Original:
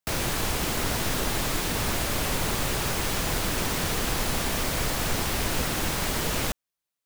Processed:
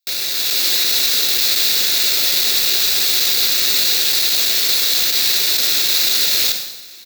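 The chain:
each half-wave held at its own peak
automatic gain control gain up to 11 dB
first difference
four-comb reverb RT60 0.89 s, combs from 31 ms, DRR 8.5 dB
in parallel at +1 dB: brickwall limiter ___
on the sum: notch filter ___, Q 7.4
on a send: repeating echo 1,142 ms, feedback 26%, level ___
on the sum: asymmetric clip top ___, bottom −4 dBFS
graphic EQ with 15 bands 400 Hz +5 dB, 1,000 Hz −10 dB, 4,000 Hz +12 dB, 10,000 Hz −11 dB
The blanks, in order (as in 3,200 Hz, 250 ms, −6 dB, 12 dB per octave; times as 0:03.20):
−12 dBFS, 3,100 Hz, −24 dB, −9 dBFS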